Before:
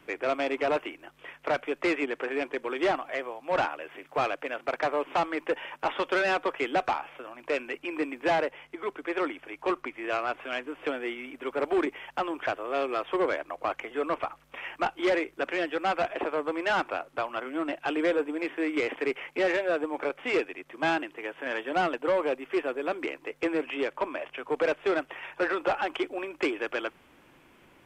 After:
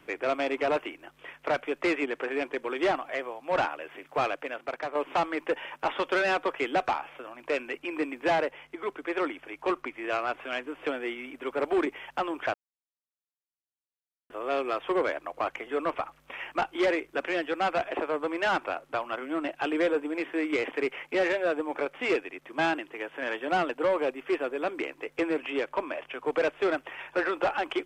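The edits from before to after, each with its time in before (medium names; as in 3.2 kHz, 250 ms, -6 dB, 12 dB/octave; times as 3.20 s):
4.31–4.95 s: fade out, to -8 dB
12.54 s: insert silence 1.76 s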